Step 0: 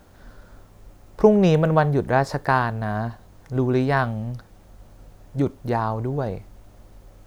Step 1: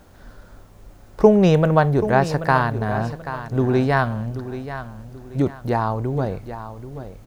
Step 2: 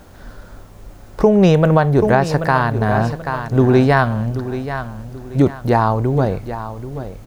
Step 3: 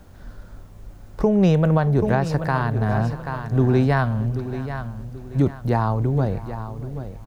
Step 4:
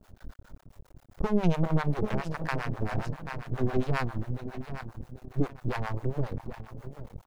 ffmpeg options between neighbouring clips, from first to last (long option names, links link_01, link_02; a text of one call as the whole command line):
ffmpeg -i in.wav -af "aecho=1:1:783|1566|2349:0.251|0.0829|0.0274,volume=2dB" out.wav
ffmpeg -i in.wav -af "alimiter=limit=-9dB:level=0:latency=1:release=272,volume=6.5dB" out.wav
ffmpeg -i in.wav -filter_complex "[0:a]aecho=1:1:629:0.106,acrossover=split=220[link_01][link_02];[link_01]acontrast=63[link_03];[link_03][link_02]amix=inputs=2:normalize=0,volume=-8dB" out.wav
ffmpeg -i in.wav -filter_complex "[0:a]aeval=exprs='max(val(0),0)':channel_layout=same,acrossover=split=620[link_01][link_02];[link_01]aeval=exprs='val(0)*(1-1/2+1/2*cos(2*PI*7.4*n/s))':channel_layout=same[link_03];[link_02]aeval=exprs='val(0)*(1-1/2-1/2*cos(2*PI*7.4*n/s))':channel_layout=same[link_04];[link_03][link_04]amix=inputs=2:normalize=0" out.wav